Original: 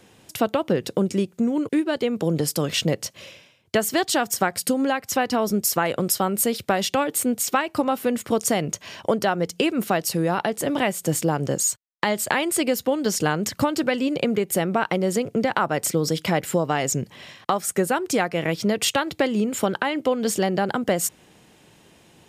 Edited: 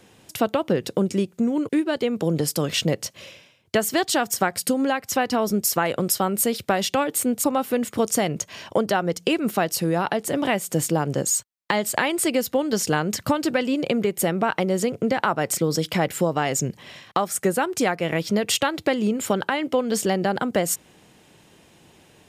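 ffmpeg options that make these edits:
-filter_complex "[0:a]asplit=2[a][b];[a]atrim=end=7.442[c];[b]atrim=start=7.768[d];[c][d]acrossfade=d=0.004:c1=hsin:c2=hsin"

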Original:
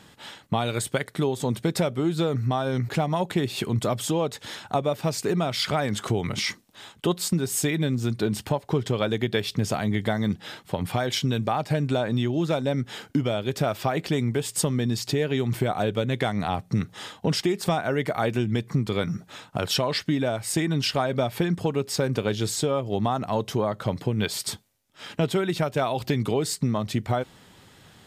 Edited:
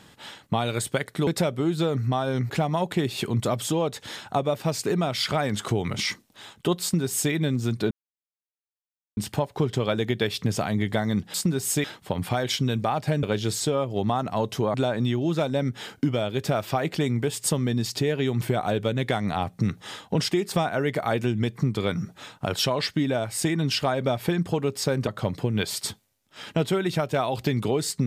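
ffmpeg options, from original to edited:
-filter_complex "[0:a]asplit=8[a][b][c][d][e][f][g][h];[a]atrim=end=1.272[i];[b]atrim=start=1.658:end=8.3,asetpts=PTS-STARTPTS,afade=t=out:st=6.638:d=0.004:c=hsin,apad=pad_dur=1.26[j];[c]atrim=start=8.3:end=10.472,asetpts=PTS-STARTPTS,afade=t=in:d=0.004:c=hsin[k];[d]atrim=start=7.208:end=7.712[l];[e]atrim=start=10.468:end=11.862[m];[f]atrim=start=22.188:end=23.702[n];[g]atrim=start=11.858:end=22.192[o];[h]atrim=start=23.698[p];[j][k]concat=n=2:v=0:a=1[q];[i][q]acrossfade=d=0.004:c1=hsin:c2=hsin[r];[r][l]acrossfade=d=0.004:c1=hsin:c2=hsin[s];[s][m]acrossfade=d=0.004:c1=hsin:c2=hsin[t];[t][n]acrossfade=d=0.004:c1=hsin:c2=hsin[u];[u][o]acrossfade=d=0.004:c1=hsin:c2=hsin[v];[v][p]acrossfade=d=0.004:c1=hsin:c2=hsin"

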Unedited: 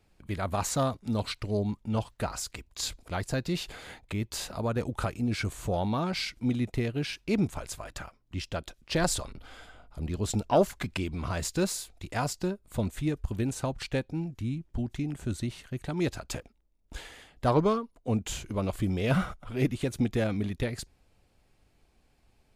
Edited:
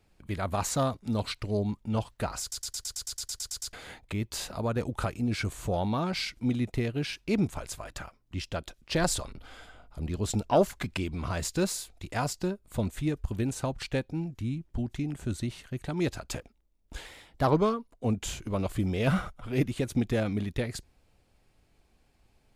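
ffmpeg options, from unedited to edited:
-filter_complex "[0:a]asplit=15[a][b][c][d][e][f][g][h][i][j][k][l][m][n][o];[a]atrim=end=2.522[p];[b]atrim=start=2.408:end=2.522[q];[c]atrim=start=2.408:end=2.522[r];[d]atrim=start=2.408:end=2.522[s];[e]atrim=start=2.408:end=2.522[t];[f]atrim=start=2.408:end=2.522[u];[g]atrim=start=2.408:end=2.522[v];[h]atrim=start=2.408:end=2.522[w];[i]atrim=start=2.408:end=2.522[x];[j]atrim=start=2.408:end=2.522[y];[k]atrim=start=2.408:end=2.522[z];[l]atrim=start=2.408:end=2.522[aa];[m]atrim=start=3.728:end=17.064[ab];[n]atrim=start=17.06:end=17.51,asetpts=PTS-STARTPTS,asetrate=48069,aresample=44100,atrim=end_sample=18206,asetpts=PTS-STARTPTS[ac];[o]atrim=start=17.506[ad];[p][q]acrossfade=d=0.004:c1=hsin:c2=hsin[ae];[ae][r]acrossfade=d=0.004:c1=hsin:c2=hsin[af];[af][s]acrossfade=d=0.004:c1=hsin:c2=hsin[ag];[ag][t]acrossfade=d=0.004:c1=hsin:c2=hsin[ah];[ah][u]acrossfade=d=0.004:c1=hsin:c2=hsin[ai];[ai][v]acrossfade=d=0.004:c1=hsin:c2=hsin[aj];[aj][w]acrossfade=d=0.004:c1=hsin:c2=hsin[ak];[ak][x]acrossfade=d=0.004:c1=hsin:c2=hsin[al];[al][y]acrossfade=d=0.004:c1=hsin:c2=hsin[am];[am][z]acrossfade=d=0.004:c1=hsin:c2=hsin[an];[an][aa]acrossfade=d=0.004:c1=hsin:c2=hsin[ao];[ao][ab]acrossfade=d=0.004:c1=hsin:c2=hsin[ap];[ap][ac]acrossfade=d=0.004:c1=hsin:c2=hsin[aq];[aq][ad]acrossfade=d=0.004:c1=hsin:c2=hsin"

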